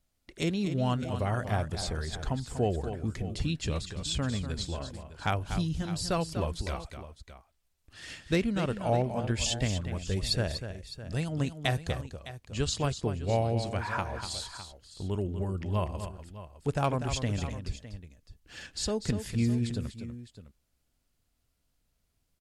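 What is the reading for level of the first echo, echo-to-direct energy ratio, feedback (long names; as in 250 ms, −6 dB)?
−9.5 dB, −8.5 dB, repeats not evenly spaced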